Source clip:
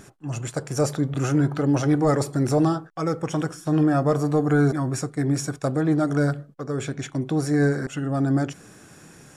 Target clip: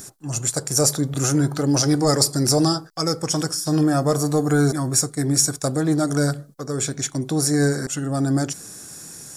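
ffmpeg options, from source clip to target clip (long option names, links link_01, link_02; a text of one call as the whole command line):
ffmpeg -i in.wav -filter_complex "[0:a]asettb=1/sr,asplit=3[link_01][link_02][link_03];[link_01]atrim=end=1.714[link_04];[link_02]atrim=start=1.71:end=3.81,asetpts=PTS-STARTPTS,afade=type=in:duration=0.004:curve=qsin,afade=type=out:start_time=2.096:duration=0.004:curve=qsin,equalizer=frequency=4900:width_type=o:width=0.24:gain=11[link_05];[link_03]atrim=start=3.806[link_06];[link_04][link_05]acrossfade=duration=0.004:curve1=hsin:curve2=qsin[link_07];[link_07][link_06]acrossfade=duration=0.004:curve1=qsin:curve2=hsin,aexciter=amount=5:drive=4.5:freq=4000,volume=1dB" out.wav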